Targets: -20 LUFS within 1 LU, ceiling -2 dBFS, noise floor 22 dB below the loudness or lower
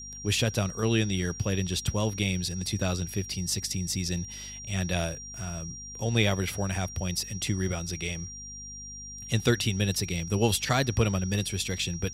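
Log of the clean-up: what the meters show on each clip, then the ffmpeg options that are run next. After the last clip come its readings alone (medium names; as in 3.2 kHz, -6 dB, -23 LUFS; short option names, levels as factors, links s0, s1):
hum 50 Hz; highest harmonic 250 Hz; hum level -46 dBFS; steady tone 5.7 kHz; tone level -40 dBFS; loudness -29.0 LUFS; peak level -9.0 dBFS; loudness target -20.0 LUFS
-> -af "bandreject=f=50:t=h:w=4,bandreject=f=100:t=h:w=4,bandreject=f=150:t=h:w=4,bandreject=f=200:t=h:w=4,bandreject=f=250:t=h:w=4"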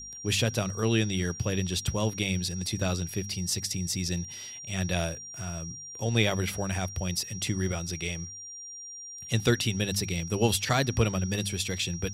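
hum not found; steady tone 5.7 kHz; tone level -40 dBFS
-> -af "bandreject=f=5700:w=30"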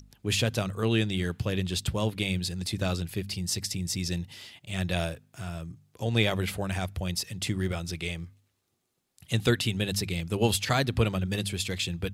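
steady tone not found; loudness -29.5 LUFS; peak level -8.5 dBFS; loudness target -20.0 LUFS
-> -af "volume=2.99,alimiter=limit=0.794:level=0:latency=1"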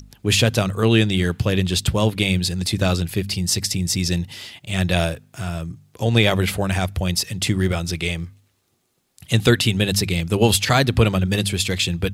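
loudness -20.0 LUFS; peak level -2.0 dBFS; noise floor -67 dBFS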